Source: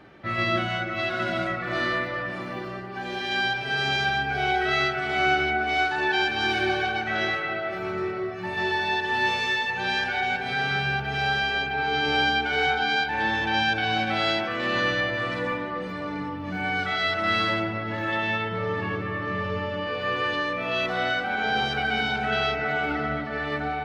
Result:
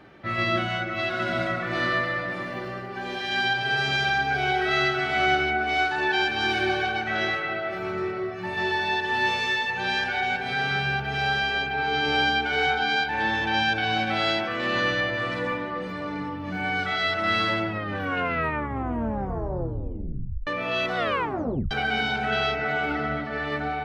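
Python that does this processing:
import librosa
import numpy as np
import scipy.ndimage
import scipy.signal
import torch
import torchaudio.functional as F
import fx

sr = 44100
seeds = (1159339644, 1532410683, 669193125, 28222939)

y = fx.echo_feedback(x, sr, ms=137, feedback_pct=56, wet_db=-9, at=(1.29, 5.36), fade=0.02)
y = fx.edit(y, sr, fx.tape_stop(start_s=17.67, length_s=2.8),
    fx.tape_stop(start_s=20.97, length_s=0.74), tone=tone)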